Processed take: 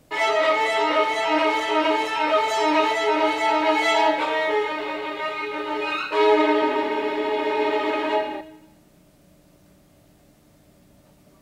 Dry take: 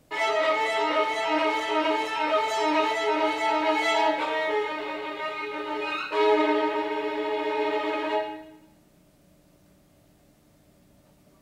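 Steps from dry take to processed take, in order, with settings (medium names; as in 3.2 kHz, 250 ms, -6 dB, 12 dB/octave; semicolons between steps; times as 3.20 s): 6.41–8.41 s: frequency-shifting echo 206 ms, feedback 35%, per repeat -36 Hz, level -13.5 dB; trim +4 dB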